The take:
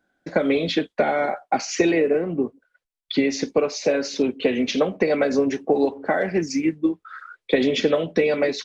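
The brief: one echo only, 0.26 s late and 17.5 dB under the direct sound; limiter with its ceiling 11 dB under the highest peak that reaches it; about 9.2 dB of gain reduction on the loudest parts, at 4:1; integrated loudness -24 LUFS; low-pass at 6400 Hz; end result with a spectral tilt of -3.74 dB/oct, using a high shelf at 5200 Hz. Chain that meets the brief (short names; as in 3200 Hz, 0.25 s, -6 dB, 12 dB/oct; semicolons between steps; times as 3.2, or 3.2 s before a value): LPF 6400 Hz; high shelf 5200 Hz +4 dB; compressor 4:1, threshold -26 dBFS; limiter -24 dBFS; echo 0.26 s -17.5 dB; gain +9 dB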